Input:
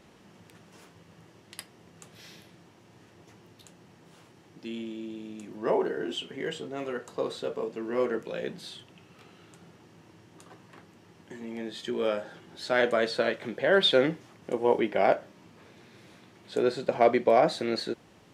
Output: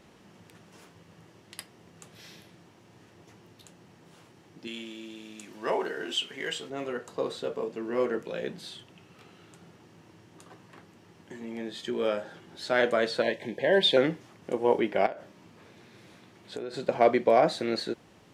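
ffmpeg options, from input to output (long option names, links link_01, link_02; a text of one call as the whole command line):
ffmpeg -i in.wav -filter_complex "[0:a]asettb=1/sr,asplit=3[link_01][link_02][link_03];[link_01]atrim=end=4.674[link_04];[link_02]atrim=start=4.67:end=6.7,asetpts=PTS-STARTPTS,afade=type=in:duration=0.004:curve=qsin,afade=type=out:start_time=2.026:duration=0.004:curve=qsin,tiltshelf=frequency=860:gain=-7[link_05];[link_03]atrim=start=6.696[link_06];[link_04][link_05]acrossfade=duration=0.004:curve1=hsin:curve2=qsin[link_07];[link_07][link_06]acrossfade=duration=0.004:curve1=qsin:curve2=hsin,asettb=1/sr,asplit=3[link_08][link_09][link_10];[link_08]atrim=end=13.224[link_11];[link_09]atrim=start=13.22:end=13.97,asetpts=PTS-STARTPTS,afade=type=in:duration=0.004:curve=qsin,afade=type=out:start_time=0.746:duration=0.004:curve=qsin,asuperstop=centerf=1300:order=20:qfactor=2.5[link_12];[link_10]atrim=start=13.966[link_13];[link_11][link_12]acrossfade=duration=0.004:curve1=hsin:curve2=qsin[link_14];[link_14][link_13]acrossfade=duration=0.004:curve1=qsin:curve2=hsin,asettb=1/sr,asplit=3[link_15][link_16][link_17];[link_15]atrim=end=15.064[link_18];[link_16]atrim=start=15.06:end=16.74,asetpts=PTS-STARTPTS,afade=type=in:duration=0.004:curve=qsin,afade=type=out:start_time=1.676:duration=0.004:curve=qsin,acompressor=threshold=-31dB:ratio=16:attack=3.2:release=140:knee=1:detection=peak[link_19];[link_17]atrim=start=16.736[link_20];[link_18][link_19]acrossfade=duration=0.004:curve1=hsin:curve2=qsin[link_21];[link_21][link_20]acrossfade=duration=0.004:curve1=qsin:curve2=hsin" out.wav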